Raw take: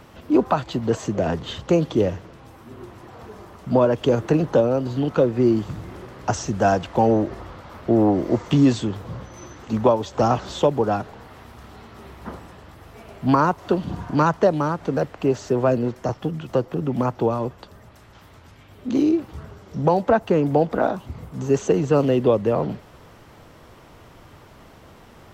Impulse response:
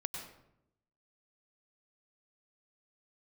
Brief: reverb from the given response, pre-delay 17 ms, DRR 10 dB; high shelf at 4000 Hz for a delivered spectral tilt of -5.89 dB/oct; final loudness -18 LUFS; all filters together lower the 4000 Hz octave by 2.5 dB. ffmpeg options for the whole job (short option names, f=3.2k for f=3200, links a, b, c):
-filter_complex "[0:a]highshelf=f=4k:g=5,equalizer=f=4k:t=o:g=-6.5,asplit=2[a][b];[1:a]atrim=start_sample=2205,adelay=17[c];[b][c]afir=irnorm=-1:irlink=0,volume=-10.5dB[d];[a][d]amix=inputs=2:normalize=0,volume=3dB"